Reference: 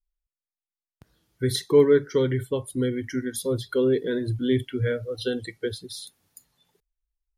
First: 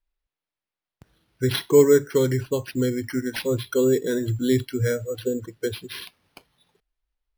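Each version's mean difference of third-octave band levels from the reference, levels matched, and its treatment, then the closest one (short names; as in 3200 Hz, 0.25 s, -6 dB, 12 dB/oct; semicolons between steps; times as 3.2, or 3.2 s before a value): 6.0 dB: spectral gain 5.21–5.61, 700–5500 Hz -20 dB; careless resampling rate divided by 6×, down none, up hold; gain +2 dB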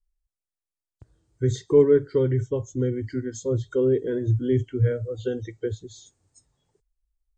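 4.0 dB: nonlinear frequency compression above 3000 Hz 1.5:1; EQ curve 110 Hz 0 dB, 200 Hz -13 dB, 330 Hz -5 dB, 3500 Hz -19 dB, 5800 Hz -12 dB; gain +7 dB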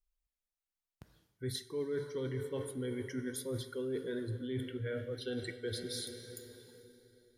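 8.0 dB: plate-style reverb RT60 3.5 s, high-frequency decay 0.8×, DRR 9.5 dB; reverse; compressor 6:1, threshold -34 dBFS, peak gain reduction 20.5 dB; reverse; gain -2 dB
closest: second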